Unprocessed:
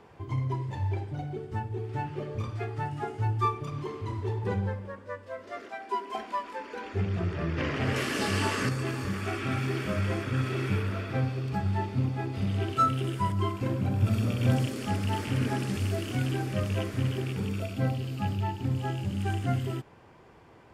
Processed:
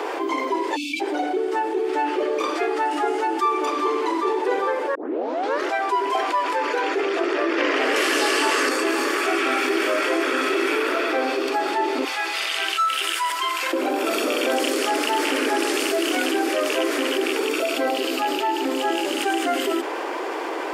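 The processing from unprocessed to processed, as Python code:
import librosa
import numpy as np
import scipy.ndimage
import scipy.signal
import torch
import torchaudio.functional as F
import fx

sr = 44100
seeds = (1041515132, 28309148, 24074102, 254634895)

y = fx.spec_erase(x, sr, start_s=0.76, length_s=0.25, low_hz=310.0, high_hz=2200.0)
y = fx.echo_throw(y, sr, start_s=3.06, length_s=0.53, ms=400, feedback_pct=75, wet_db=-10.0)
y = fx.highpass(y, sr, hz=1500.0, slope=12, at=(12.04, 13.73))
y = fx.edit(y, sr, fx.tape_start(start_s=4.95, length_s=0.73), tone=tone)
y = scipy.signal.sosfilt(scipy.signal.butter(12, 290.0, 'highpass', fs=sr, output='sos'), y)
y = fx.env_flatten(y, sr, amount_pct=70)
y = F.gain(torch.from_numpy(y), 5.5).numpy()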